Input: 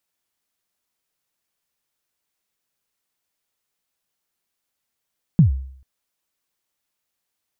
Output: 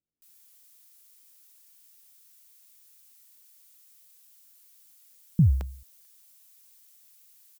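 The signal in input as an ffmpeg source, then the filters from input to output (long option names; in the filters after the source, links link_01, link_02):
-f lavfi -i "aevalsrc='0.501*pow(10,-3*t/0.61)*sin(2*PI*(190*0.117/log(66/190)*(exp(log(66/190)*min(t,0.117)/0.117)-1)+66*max(t-0.117,0)))':duration=0.44:sample_rate=44100"
-filter_complex "[0:a]alimiter=limit=-13dB:level=0:latency=1:release=103,crystalizer=i=8.5:c=0,acrossover=split=400[link_01][link_02];[link_02]adelay=220[link_03];[link_01][link_03]amix=inputs=2:normalize=0"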